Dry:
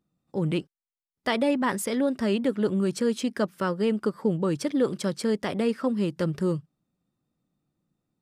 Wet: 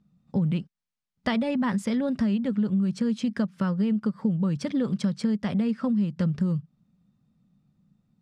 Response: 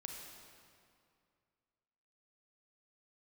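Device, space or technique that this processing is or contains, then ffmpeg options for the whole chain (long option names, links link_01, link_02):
jukebox: -af "lowpass=6100,lowshelf=frequency=260:width_type=q:width=3:gain=6.5,acompressor=threshold=-27dB:ratio=6,volume=4dB"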